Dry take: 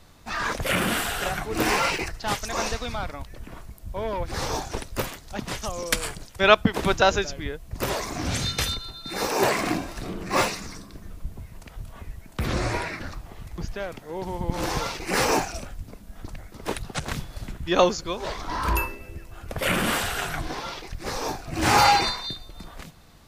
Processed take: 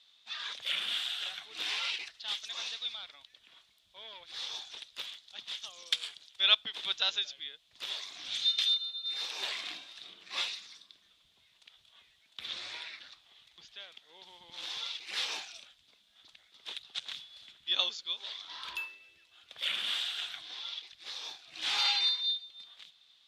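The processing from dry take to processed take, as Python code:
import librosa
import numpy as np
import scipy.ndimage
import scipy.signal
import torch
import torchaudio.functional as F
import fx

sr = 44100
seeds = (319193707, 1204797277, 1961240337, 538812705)

y = fx.bandpass_q(x, sr, hz=3500.0, q=6.4)
y = F.gain(torch.from_numpy(y), 4.5).numpy()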